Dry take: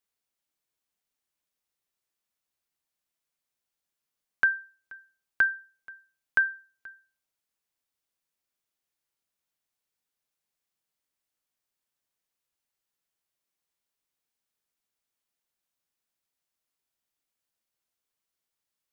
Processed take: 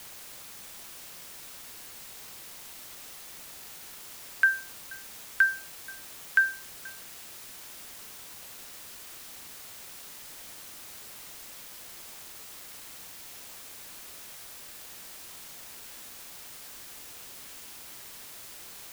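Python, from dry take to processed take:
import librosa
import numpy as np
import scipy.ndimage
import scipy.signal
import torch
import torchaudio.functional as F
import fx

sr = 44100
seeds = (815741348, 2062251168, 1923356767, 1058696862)

p1 = scipy.signal.sosfilt(scipy.signal.butter(4, 1400.0, 'highpass', fs=sr, output='sos'), x)
p2 = fx.quant_dither(p1, sr, seeds[0], bits=6, dither='triangular')
y = p1 + (p2 * librosa.db_to_amplitude(-9.5))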